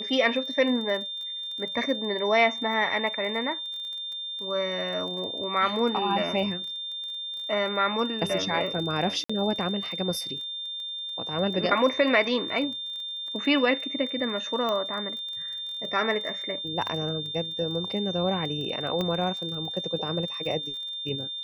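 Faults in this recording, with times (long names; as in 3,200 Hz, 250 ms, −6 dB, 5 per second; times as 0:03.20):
surface crackle 23 per second −35 dBFS
whistle 3,600 Hz −32 dBFS
0:09.24–0:09.29: drop-out 55 ms
0:14.69: click −17 dBFS
0:19.01: click −16 dBFS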